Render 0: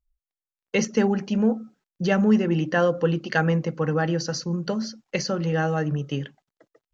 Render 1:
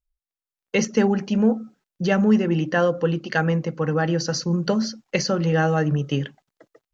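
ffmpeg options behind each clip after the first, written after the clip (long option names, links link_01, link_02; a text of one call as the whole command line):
ffmpeg -i in.wav -af "dynaudnorm=framelen=340:gausssize=3:maxgain=13dB,volume=-5.5dB" out.wav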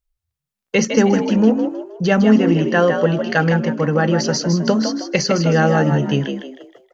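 ffmpeg -i in.wav -filter_complex "[0:a]asplit=5[link_01][link_02][link_03][link_04][link_05];[link_02]adelay=157,afreqshift=61,volume=-7dB[link_06];[link_03]adelay=314,afreqshift=122,volume=-15.9dB[link_07];[link_04]adelay=471,afreqshift=183,volume=-24.7dB[link_08];[link_05]adelay=628,afreqshift=244,volume=-33.6dB[link_09];[link_01][link_06][link_07][link_08][link_09]amix=inputs=5:normalize=0,volume=4.5dB" out.wav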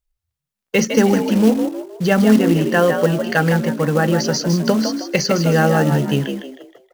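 ffmpeg -i in.wav -af "acrusher=bits=5:mode=log:mix=0:aa=0.000001" out.wav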